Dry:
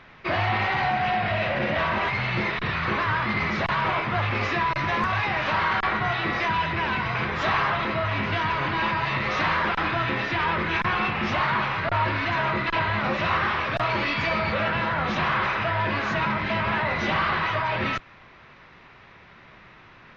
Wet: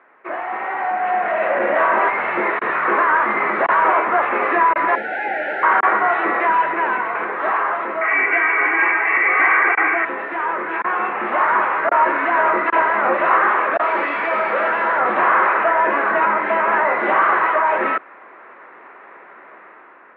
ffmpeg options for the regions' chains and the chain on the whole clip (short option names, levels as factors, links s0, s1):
-filter_complex "[0:a]asettb=1/sr,asplit=3[s0][s1][s2];[s0]atrim=end=4.954[s3];[s1]atrim=start=4.95:end=5.63,asetpts=PTS-STARTPTS,afade=t=in:d=0.004:c=qsin,afade=t=out:st=0.676:d=0.004:c=qsin,asplit=2[s4][s5];[s5]adelay=13,volume=0.251[s6];[s4][s6]amix=inputs=2:normalize=0,atrim=end_sample=29988,asoftclip=type=hard:threshold=0.0447,asuperstop=centerf=1100:order=20:qfactor=2.3[s7];[s2]atrim=start=5.626[s8];[s3][s7]acrossfade=d=0.004:c1=hsin:c2=qsin[s9];[s9][s8]acrossfade=d=0.004:c1=qsin:c2=hsin,asettb=1/sr,asplit=3[s10][s11][s12];[s10]atrim=end=8.014[s13];[s11]atrim=start=8.01:end=10.05,asetpts=PTS-STARTPTS,afade=t=in:d=0.004:c=qsin,afade=t=out:st=2.036:d=0.004:c=qsin,lowpass=f=2200:t=q:w=10,aecho=1:1:2.6:0.73,atrim=end_sample=89964,asoftclip=type=hard:threshold=0.447[s14];[s12]atrim=start=10.046[s15];[s13][s14]acrossfade=d=0.004:c1=hsin:c2=qsin[s16];[s16][s15]acrossfade=d=0.004:c1=qsin:c2=hsin,asettb=1/sr,asplit=3[s17][s18][s19];[s17]atrim=end=13.774[s20];[s18]atrim=start=13.77:end=15,asetpts=PTS-STARTPTS,afade=t=in:d=0.004:c=qsin,afade=t=out:st=1.226:d=0.004:c=qsin,highshelf=f=2600:g=8.5,asoftclip=type=hard:threshold=0.0631[s21];[s19]atrim=start=14.996[s22];[s20][s21]acrossfade=d=0.004:c1=hsin:c2=qsin[s23];[s23][s22]acrossfade=d=0.004:c1=qsin:c2=hsin,highpass=f=330:w=0.5412,highpass=f=330:w=1.3066,dynaudnorm=f=480:g=5:m=3.76,lowpass=f=1800:w=0.5412,lowpass=f=1800:w=1.3066"